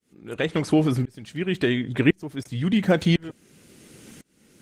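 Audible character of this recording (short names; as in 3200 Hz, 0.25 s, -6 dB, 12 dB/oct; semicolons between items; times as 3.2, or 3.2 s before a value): tremolo saw up 0.95 Hz, depth 100%; Opus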